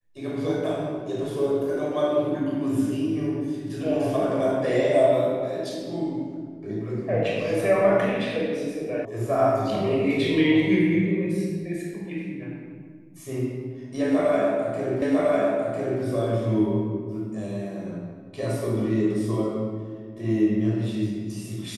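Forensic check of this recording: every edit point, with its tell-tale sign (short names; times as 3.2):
9.05 sound cut off
15.02 repeat of the last 1 s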